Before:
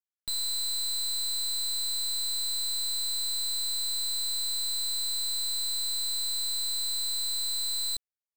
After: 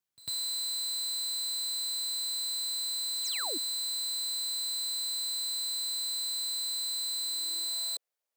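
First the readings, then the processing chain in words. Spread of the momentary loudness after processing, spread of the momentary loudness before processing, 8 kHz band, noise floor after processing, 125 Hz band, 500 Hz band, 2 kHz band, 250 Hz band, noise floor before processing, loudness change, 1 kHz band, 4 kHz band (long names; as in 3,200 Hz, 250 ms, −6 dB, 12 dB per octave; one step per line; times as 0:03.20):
0 LU, 0 LU, −2.5 dB, below −85 dBFS, can't be measured, +4.0 dB, +1.5 dB, +2.5 dB, below −85 dBFS, −2.5 dB, +2.0 dB, −2.0 dB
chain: brickwall limiter −39 dBFS, peak gain reduction 9 dB
sound drawn into the spectrogram fall, 0:03.24–0:03.58, 260–7,900 Hz −46 dBFS
on a send: backwards echo 99 ms −20 dB
on the sum: high-pass filter sweep 110 Hz → 530 Hz, 0:07.10–0:07.78
level +6 dB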